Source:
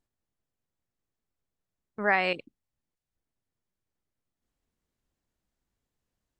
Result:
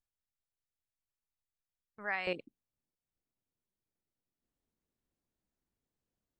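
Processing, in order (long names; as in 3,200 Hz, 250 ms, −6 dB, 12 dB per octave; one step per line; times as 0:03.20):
parametric band 300 Hz −9.5 dB 2.7 octaves, from 0:02.27 +6 dB
level −9 dB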